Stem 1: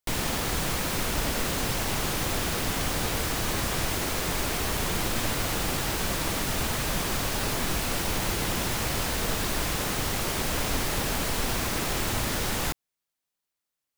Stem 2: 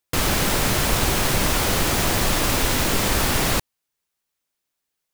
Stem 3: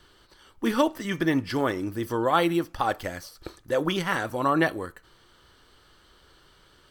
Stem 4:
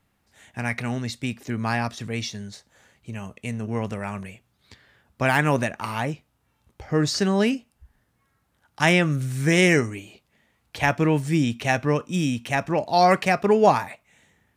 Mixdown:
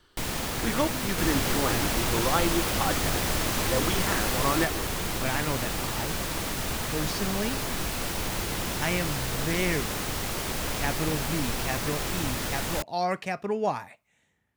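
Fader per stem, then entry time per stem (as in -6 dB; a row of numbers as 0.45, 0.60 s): -2.5, -9.0, -4.5, -10.5 dB; 0.10, 1.05, 0.00, 0.00 s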